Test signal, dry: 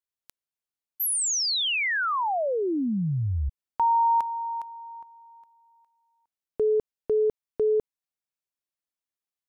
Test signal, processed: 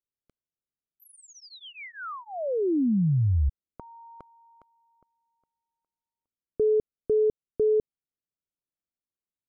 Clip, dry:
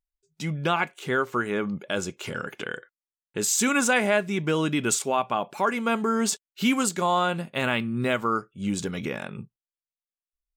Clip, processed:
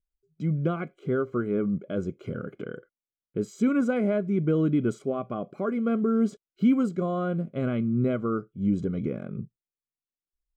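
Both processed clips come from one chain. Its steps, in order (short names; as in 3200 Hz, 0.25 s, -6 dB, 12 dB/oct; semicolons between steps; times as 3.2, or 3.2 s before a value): running mean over 49 samples; gain +4 dB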